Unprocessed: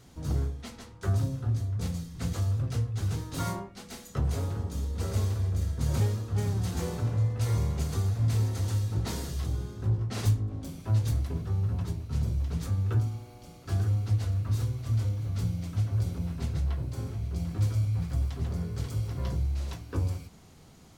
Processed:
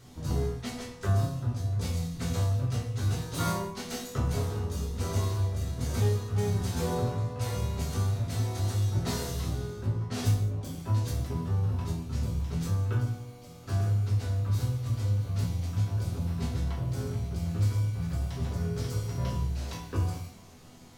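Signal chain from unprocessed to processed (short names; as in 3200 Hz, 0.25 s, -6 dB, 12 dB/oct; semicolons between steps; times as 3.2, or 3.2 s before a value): in parallel at 0 dB: vocal rider 0.5 s; on the sum: resonator bank E2 minor, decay 0.3 s; non-linear reverb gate 0.24 s falling, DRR 4 dB; gain +6.5 dB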